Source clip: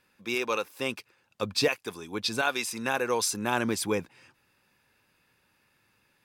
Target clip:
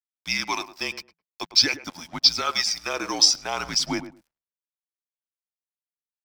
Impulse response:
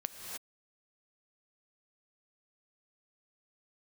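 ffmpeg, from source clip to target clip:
-filter_complex "[0:a]highpass=600,highshelf=frequency=2900:gain=-3.5,asplit=2[link_01][link_02];[link_02]alimiter=limit=-23dB:level=0:latency=1:release=34,volume=-1dB[link_03];[link_01][link_03]amix=inputs=2:normalize=0,aphaser=in_gain=1:out_gain=1:delay=1.6:decay=0.43:speed=0.49:type=sinusoidal,lowpass=frequency=5500:width_type=q:width=9.8,aeval=exprs='sgn(val(0))*max(abs(val(0))-0.00841,0)':channel_layout=same,afreqshift=-170,asplit=2[link_04][link_05];[link_05]adelay=106,lowpass=frequency=1000:poles=1,volume=-11dB,asplit=2[link_06][link_07];[link_07]adelay=106,lowpass=frequency=1000:poles=1,volume=0.18[link_08];[link_06][link_08]amix=inputs=2:normalize=0[link_09];[link_04][link_09]amix=inputs=2:normalize=0,volume=-2dB"

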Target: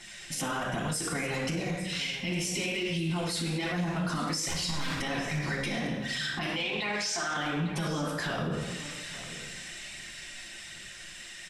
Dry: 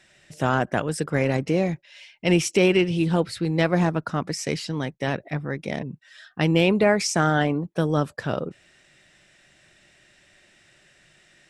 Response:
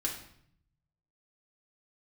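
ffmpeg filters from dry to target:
-filter_complex "[0:a]dynaudnorm=framelen=390:gausssize=13:maxgain=11.5dB,asettb=1/sr,asplit=3[link_01][link_02][link_03];[link_01]atrim=end=4.484[link_04];[link_02]atrim=start=4.48:end=4.94,asetpts=PTS-STARTPTS,afade=type=in:duration=0.004:curve=qsin,afade=type=out:start_time=0.456:duration=0.004:curve=qsin,aeval=exprs='0.126*(abs(mod(val(0)/0.126+3,4)-2)-1)':channel_layout=same[link_05];[link_03]atrim=start=4.936[link_06];[link_04][link_05]acrossfade=duration=0.004:curve1=hsin:curve2=qsin[link_07];[link_07][link_06]acrossfade=duration=0.004:curve1=qsin:curve2=hsin,aphaser=in_gain=1:out_gain=1:delay=4.3:decay=0.55:speed=1.3:type=triangular,asettb=1/sr,asplit=3[link_08][link_09][link_10];[link_08]atrim=end=6.464[link_11];[link_09]atrim=start=6.46:end=7.37,asetpts=PTS-STARTPTS,afade=type=in:duration=0.004:curve=qsin,afade=type=out:start_time=0.906:duration=0.004:curve=qsin,acrossover=split=520 6600:gain=0.224 1 0.158[link_12][link_13][link_14];[link_12][link_13][link_14]amix=inputs=3:normalize=0[link_15];[link_10]atrim=start=7.366[link_16];[link_11][link_15]acrossfade=duration=0.004:curve1=hsin:curve2=qsin[link_17];[link_17][link_16]acrossfade=duration=0.004:curve1=qsin:curve2=hsin,acompressor=threshold=-28dB:ratio=6,highshelf=frequency=2100:gain=11.5[link_18];[1:a]atrim=start_sample=2205,asetrate=29547,aresample=44100[link_19];[link_18][link_19]afir=irnorm=-1:irlink=0,alimiter=limit=-21dB:level=0:latency=1:release=43,aecho=1:1:853:0.2,volume=-2.5dB"

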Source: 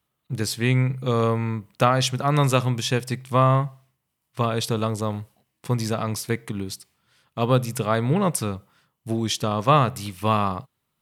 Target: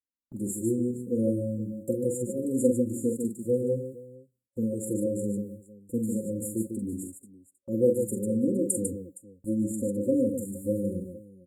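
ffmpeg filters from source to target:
ffmpeg -i in.wav -af "afftfilt=real='re*(1-between(b*sr/4096,580,7200))':imag='im*(1-between(b*sr/4096,580,7200))':win_size=4096:overlap=0.75,agate=range=-23dB:threshold=-46dB:ratio=16:detection=peak,adynamicequalizer=threshold=0.0126:dfrequency=470:dqfactor=4.9:tfrequency=470:tqfactor=4.9:attack=5:release=100:ratio=0.375:range=2:mode=boostabove:tftype=bell,aecho=1:1:3.3:0.92,flanger=delay=3:depth=2.9:regen=25:speed=0.72:shape=triangular,aecho=1:1:43|142|446:0.501|0.501|0.119,asetrate=42336,aresample=44100,volume=-2dB" out.wav

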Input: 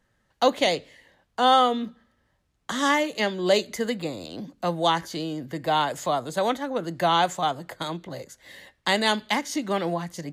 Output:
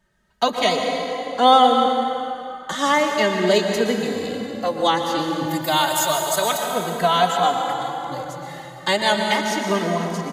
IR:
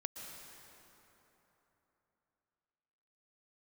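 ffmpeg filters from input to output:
-filter_complex "[0:a]asettb=1/sr,asplit=3[link_01][link_02][link_03];[link_01]atrim=end=5.464[link_04];[link_02]atrim=start=5.46:end=6.73,asetpts=PTS-STARTPTS,afade=type=in:duration=0.004:curve=qsin,afade=type=out:start_time=1.266:duration=0.004:curve=qsin,aemphasis=mode=production:type=riaa[link_05];[link_03]atrim=start=6.726[link_06];[link_04][link_05]acrossfade=duration=0.004:curve1=hsin:curve2=qsin[link_07];[link_07][link_06]acrossfade=duration=0.004:curve1=qsin:curve2=hsin,asettb=1/sr,asplit=3[link_08][link_09][link_10];[link_08]atrim=end=7.694[link_11];[link_09]atrim=start=7.69:end=8.11,asetpts=PTS-STARTPTS,afade=type=in:duration=0.004:curve=qsin,afade=type=out:start_time=0.416:duration=0.004:curve=qsin,acompressor=threshold=-37dB:ratio=6[link_12];[link_10]atrim=start=8.106[link_13];[link_11][link_12]acrossfade=duration=0.004:curve1=hsin:curve2=qsin[link_14];[link_14][link_13]acrossfade=duration=0.004:curve1=qsin:curve2=hsin[link_15];[1:a]atrim=start_sample=2205[link_16];[link_15][link_16]afir=irnorm=-1:irlink=0,asplit=2[link_17][link_18];[link_18]adelay=2.8,afreqshift=0.32[link_19];[link_17][link_19]amix=inputs=2:normalize=1,volume=9dB"

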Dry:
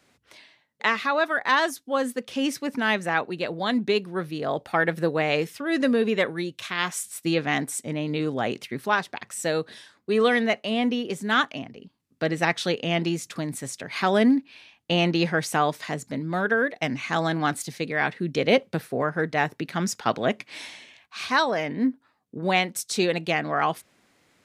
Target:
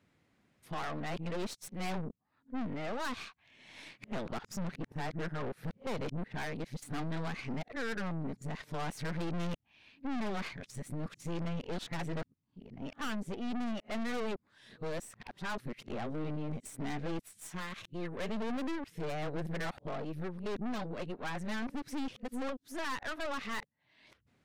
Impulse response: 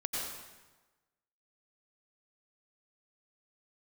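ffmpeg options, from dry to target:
-af "areverse,bass=frequency=250:gain=10,treble=frequency=4000:gain=-7,aeval=exprs='(tanh(28.2*val(0)+0.8)-tanh(0.8))/28.2':channel_layout=same,volume=-6dB"

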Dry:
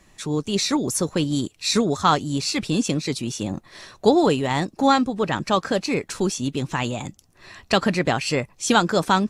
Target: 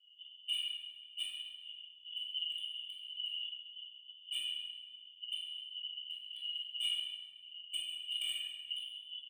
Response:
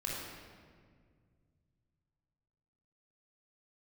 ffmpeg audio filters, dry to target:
-filter_complex "[0:a]areverse,acompressor=threshold=-26dB:ratio=12,areverse,asoftclip=type=hard:threshold=-23dB,asuperpass=centerf=3000:order=20:qfactor=5,aeval=exprs='0.0106*(abs(mod(val(0)/0.0106+3,4)-2)-1)':channel_layout=same,aecho=1:1:135|270|405|540:0.178|0.0694|0.027|0.0105[link_01];[1:a]atrim=start_sample=2205,asetrate=57330,aresample=44100[link_02];[link_01][link_02]afir=irnorm=-1:irlink=0,afftfilt=real='re*eq(mod(floor(b*sr/1024/280),2),0)':imag='im*eq(mod(floor(b*sr/1024/280),2),0)':win_size=1024:overlap=0.75,volume=13.5dB"

